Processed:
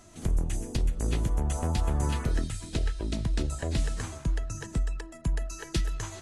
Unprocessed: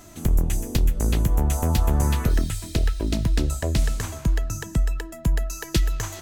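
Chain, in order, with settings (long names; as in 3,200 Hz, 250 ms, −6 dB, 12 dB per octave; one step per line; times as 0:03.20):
flanger 0.63 Hz, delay 1.6 ms, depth 1.2 ms, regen −89%
level −2.5 dB
AAC 32 kbit/s 24,000 Hz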